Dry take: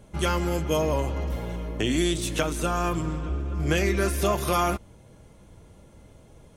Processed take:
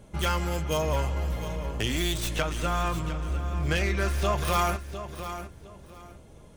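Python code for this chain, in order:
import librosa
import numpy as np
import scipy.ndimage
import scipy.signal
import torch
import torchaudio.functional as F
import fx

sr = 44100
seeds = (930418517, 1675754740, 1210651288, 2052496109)

y = fx.tracing_dist(x, sr, depth_ms=0.077)
y = fx.high_shelf(y, sr, hz=8000.0, db=-11.0, at=(2.36, 4.45))
y = fx.echo_feedback(y, sr, ms=706, feedback_pct=21, wet_db=-12.0)
y = fx.dynamic_eq(y, sr, hz=310.0, q=0.96, threshold_db=-40.0, ratio=4.0, max_db=-8)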